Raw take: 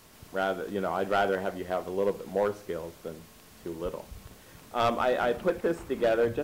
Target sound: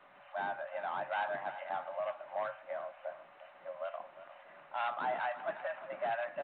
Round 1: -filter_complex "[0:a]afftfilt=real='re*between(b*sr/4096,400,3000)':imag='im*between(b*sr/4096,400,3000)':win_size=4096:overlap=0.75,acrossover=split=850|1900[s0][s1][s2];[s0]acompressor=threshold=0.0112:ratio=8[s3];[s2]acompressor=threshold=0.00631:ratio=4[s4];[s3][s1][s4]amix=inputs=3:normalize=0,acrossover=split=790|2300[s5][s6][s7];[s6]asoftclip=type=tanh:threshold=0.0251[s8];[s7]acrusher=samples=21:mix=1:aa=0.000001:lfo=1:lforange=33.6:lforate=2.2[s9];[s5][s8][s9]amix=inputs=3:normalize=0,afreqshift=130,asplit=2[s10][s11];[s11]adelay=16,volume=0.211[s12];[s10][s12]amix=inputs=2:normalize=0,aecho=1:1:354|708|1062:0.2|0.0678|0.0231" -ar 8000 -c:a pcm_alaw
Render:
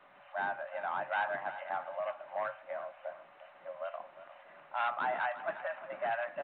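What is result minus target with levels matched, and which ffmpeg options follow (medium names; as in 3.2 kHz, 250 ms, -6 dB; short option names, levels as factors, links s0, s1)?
saturation: distortion -7 dB
-filter_complex "[0:a]afftfilt=real='re*between(b*sr/4096,400,3000)':imag='im*between(b*sr/4096,400,3000)':win_size=4096:overlap=0.75,acrossover=split=850|1900[s0][s1][s2];[s0]acompressor=threshold=0.0112:ratio=8[s3];[s2]acompressor=threshold=0.00631:ratio=4[s4];[s3][s1][s4]amix=inputs=3:normalize=0,acrossover=split=790|2300[s5][s6][s7];[s6]asoftclip=type=tanh:threshold=0.00841[s8];[s7]acrusher=samples=21:mix=1:aa=0.000001:lfo=1:lforange=33.6:lforate=2.2[s9];[s5][s8][s9]amix=inputs=3:normalize=0,afreqshift=130,asplit=2[s10][s11];[s11]adelay=16,volume=0.211[s12];[s10][s12]amix=inputs=2:normalize=0,aecho=1:1:354|708|1062:0.2|0.0678|0.0231" -ar 8000 -c:a pcm_alaw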